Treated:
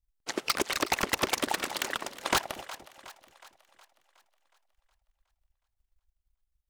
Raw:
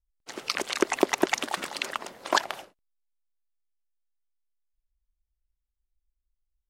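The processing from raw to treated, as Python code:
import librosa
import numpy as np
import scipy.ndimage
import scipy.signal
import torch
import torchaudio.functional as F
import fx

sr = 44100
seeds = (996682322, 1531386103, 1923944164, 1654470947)

y = 10.0 ** (-22.0 / 20.0) * (np.abs((x / 10.0 ** (-22.0 / 20.0) + 3.0) % 4.0 - 2.0) - 1.0)
y = fx.transient(y, sr, attack_db=7, sustain_db=-7)
y = fx.echo_split(y, sr, split_hz=550.0, low_ms=236, high_ms=366, feedback_pct=52, wet_db=-15.5)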